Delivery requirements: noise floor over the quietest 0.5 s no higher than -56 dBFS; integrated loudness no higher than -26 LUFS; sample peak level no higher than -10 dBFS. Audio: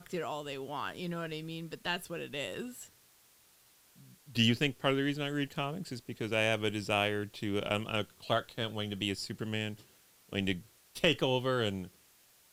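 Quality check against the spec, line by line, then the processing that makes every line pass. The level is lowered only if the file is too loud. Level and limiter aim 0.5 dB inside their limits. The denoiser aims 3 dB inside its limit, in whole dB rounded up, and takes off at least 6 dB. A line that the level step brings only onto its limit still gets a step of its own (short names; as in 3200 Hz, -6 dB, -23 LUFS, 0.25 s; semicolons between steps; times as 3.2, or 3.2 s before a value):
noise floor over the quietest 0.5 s -64 dBFS: OK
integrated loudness -34.0 LUFS: OK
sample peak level -12.0 dBFS: OK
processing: none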